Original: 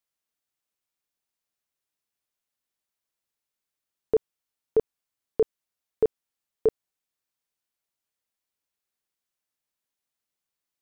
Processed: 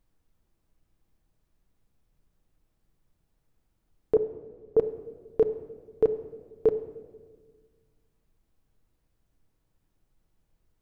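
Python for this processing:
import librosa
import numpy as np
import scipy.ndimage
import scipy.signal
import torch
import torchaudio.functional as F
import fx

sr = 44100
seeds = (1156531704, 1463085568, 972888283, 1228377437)

y = fx.lowpass(x, sr, hz=1400.0, slope=24, at=(4.15, 4.79))
y = fx.dmg_noise_colour(y, sr, seeds[0], colour='brown', level_db=-71.0)
y = fx.room_shoebox(y, sr, seeds[1], volume_m3=1600.0, walls='mixed', distance_m=0.61)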